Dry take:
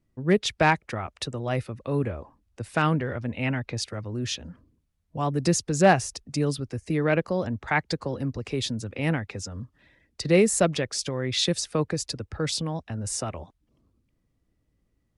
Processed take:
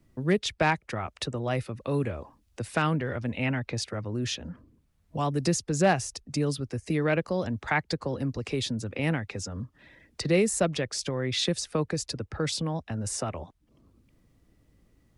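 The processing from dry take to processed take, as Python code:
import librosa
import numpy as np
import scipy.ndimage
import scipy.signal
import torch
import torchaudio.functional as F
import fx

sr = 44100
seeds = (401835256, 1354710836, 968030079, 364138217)

y = fx.band_squash(x, sr, depth_pct=40)
y = y * 10.0 ** (-2.0 / 20.0)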